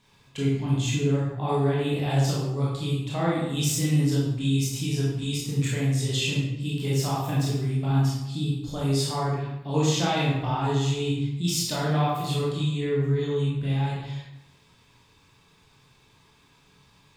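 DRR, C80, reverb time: -6.5 dB, 3.5 dB, 0.90 s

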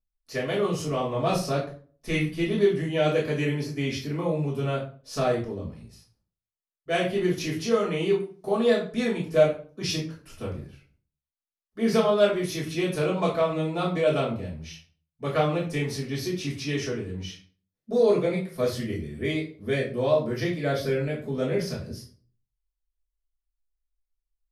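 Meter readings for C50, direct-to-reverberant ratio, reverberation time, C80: 7.5 dB, -6.0 dB, 0.45 s, 12.0 dB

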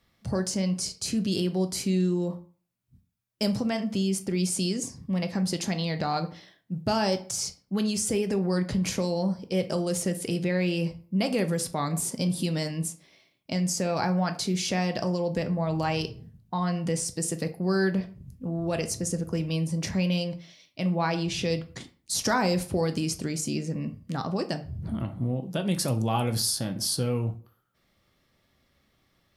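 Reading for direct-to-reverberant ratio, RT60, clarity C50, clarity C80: 7.0 dB, 0.45 s, 14.5 dB, 19.5 dB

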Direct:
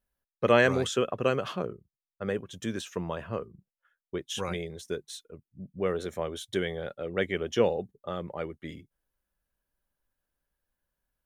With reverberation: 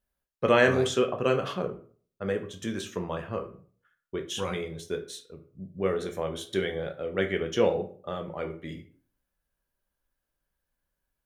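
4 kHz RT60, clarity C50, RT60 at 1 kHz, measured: 0.30 s, 12.0 dB, 0.45 s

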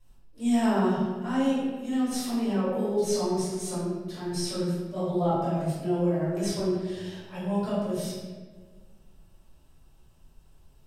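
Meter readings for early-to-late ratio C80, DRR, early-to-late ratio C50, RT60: 1.5 dB, -12.0 dB, -1.5 dB, 1.6 s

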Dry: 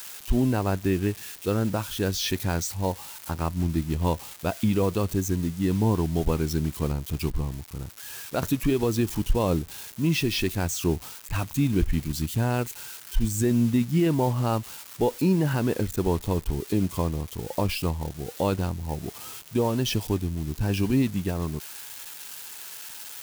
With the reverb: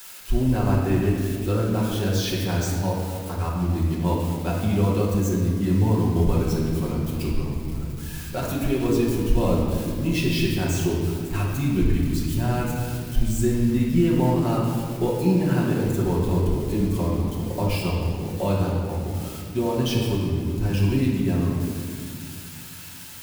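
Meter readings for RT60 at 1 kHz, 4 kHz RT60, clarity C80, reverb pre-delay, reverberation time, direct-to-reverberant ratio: 1.9 s, 1.4 s, 2.5 dB, 5 ms, 2.2 s, -5.5 dB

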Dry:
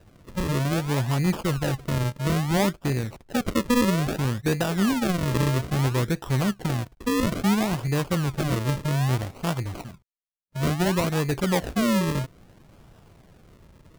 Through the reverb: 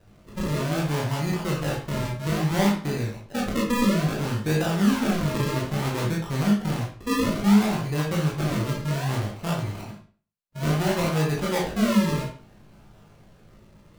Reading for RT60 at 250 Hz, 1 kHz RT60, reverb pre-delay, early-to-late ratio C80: 0.40 s, 0.40 s, 19 ms, 10.0 dB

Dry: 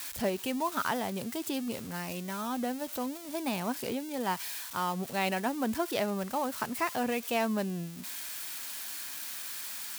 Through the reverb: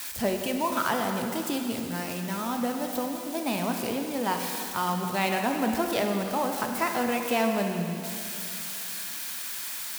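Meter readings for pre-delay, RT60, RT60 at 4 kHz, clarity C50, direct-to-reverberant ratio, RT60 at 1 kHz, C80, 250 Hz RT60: 7 ms, 2.8 s, 2.6 s, 4.0 dB, 3.0 dB, 2.8 s, 5.0 dB, 2.9 s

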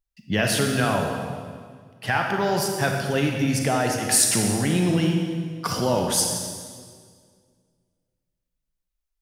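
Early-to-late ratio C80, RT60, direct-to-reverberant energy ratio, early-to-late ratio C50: 4.0 dB, 1.9 s, 1.5 dB, 2.0 dB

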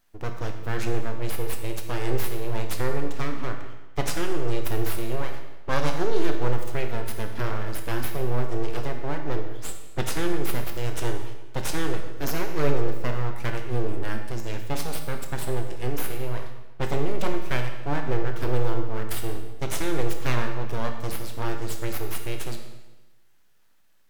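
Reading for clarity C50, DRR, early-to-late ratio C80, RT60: 6.0 dB, 4.0 dB, 8.0 dB, 1.1 s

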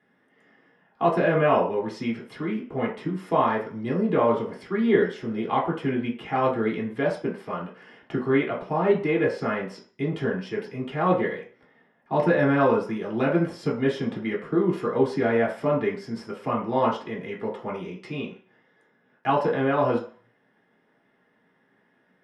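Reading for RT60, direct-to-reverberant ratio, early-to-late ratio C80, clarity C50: 0.45 s, -5.0 dB, 12.0 dB, 7.5 dB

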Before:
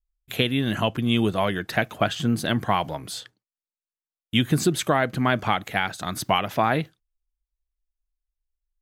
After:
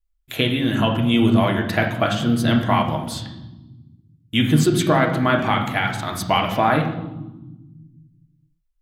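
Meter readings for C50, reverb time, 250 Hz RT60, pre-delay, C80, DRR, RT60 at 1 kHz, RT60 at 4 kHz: 7.0 dB, 1.2 s, 2.1 s, 3 ms, 10.0 dB, 1.0 dB, 1.0 s, 0.85 s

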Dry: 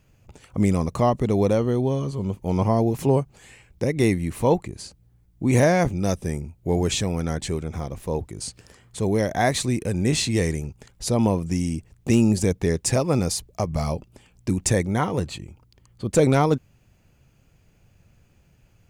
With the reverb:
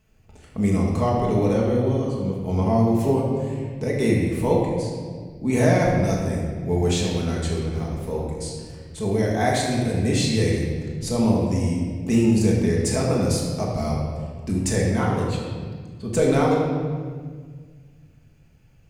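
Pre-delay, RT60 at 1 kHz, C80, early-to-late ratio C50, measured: 4 ms, 1.5 s, 2.5 dB, 1.0 dB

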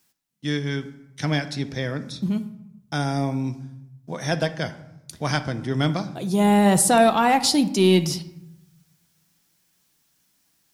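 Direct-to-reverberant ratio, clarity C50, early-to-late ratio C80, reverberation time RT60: 9.0 dB, 14.0 dB, 16.5 dB, 0.85 s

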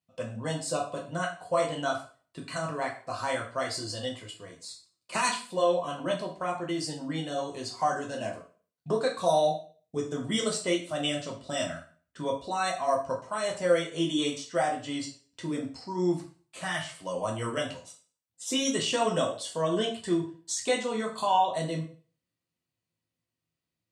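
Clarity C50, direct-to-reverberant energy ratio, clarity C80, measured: 8.5 dB, -1.5 dB, 12.5 dB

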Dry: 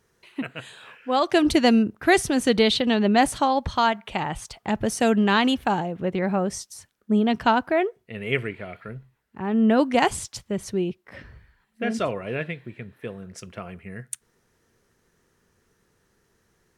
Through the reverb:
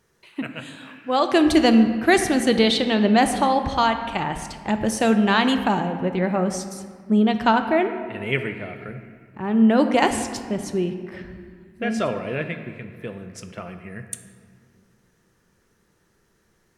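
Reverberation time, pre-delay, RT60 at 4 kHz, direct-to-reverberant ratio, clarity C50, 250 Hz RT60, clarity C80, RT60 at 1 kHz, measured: 2.0 s, 3 ms, 1.2 s, 7.0 dB, 8.5 dB, 2.8 s, 10.0 dB, 1.9 s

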